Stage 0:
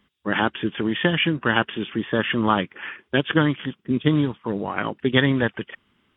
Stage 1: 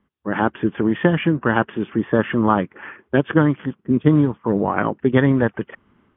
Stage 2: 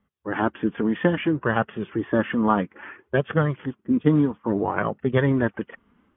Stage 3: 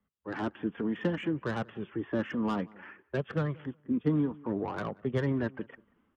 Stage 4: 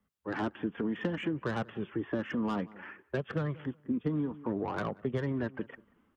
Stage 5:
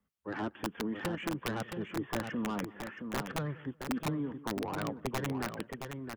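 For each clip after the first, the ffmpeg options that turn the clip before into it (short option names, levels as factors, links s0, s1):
-af "lowpass=1300,dynaudnorm=f=140:g=5:m=5.62,volume=0.891"
-af "flanger=delay=1.5:depth=2.8:regen=-37:speed=0.6:shape=sinusoidal"
-filter_complex "[0:a]acrossover=split=250|420[s0][s1][s2];[s2]asoftclip=type=tanh:threshold=0.075[s3];[s0][s1][s3]amix=inputs=3:normalize=0,asplit=2[s4][s5];[s5]adelay=184,lowpass=f=1500:p=1,volume=0.0708,asplit=2[s6][s7];[s7]adelay=184,lowpass=f=1500:p=1,volume=0.21[s8];[s4][s6][s8]amix=inputs=3:normalize=0,volume=0.376"
-af "acompressor=threshold=0.0316:ratio=6,volume=1.26"
-af "aeval=exprs='(mod(14.1*val(0)+1,2)-1)/14.1':c=same,aecho=1:1:670:0.473,volume=0.708"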